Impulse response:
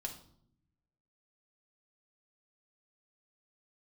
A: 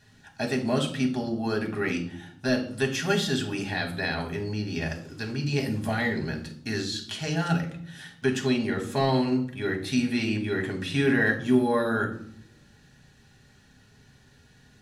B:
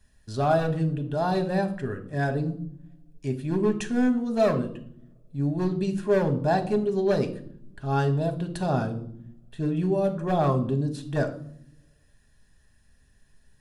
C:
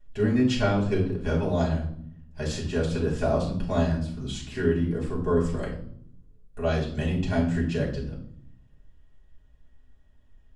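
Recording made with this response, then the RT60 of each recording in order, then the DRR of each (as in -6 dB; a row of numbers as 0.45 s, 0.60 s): A; 0.65 s, 0.65 s, 0.65 s; 1.5 dB, 6.0 dB, -6.0 dB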